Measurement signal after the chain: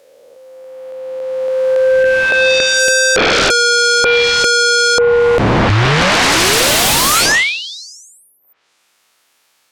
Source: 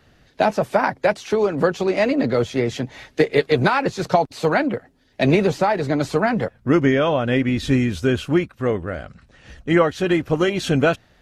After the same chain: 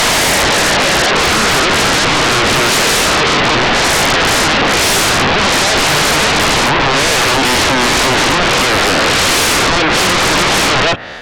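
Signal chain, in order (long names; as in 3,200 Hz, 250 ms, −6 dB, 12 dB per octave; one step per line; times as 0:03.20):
peak hold with a rise ahead of every peak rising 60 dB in 2.64 s
treble cut that deepens with the level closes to 380 Hz, closed at −8 dBFS
mid-hump overdrive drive 21 dB, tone 4,300 Hz, clips at −2 dBFS
sine wavefolder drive 17 dB, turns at −2 dBFS
level −6.5 dB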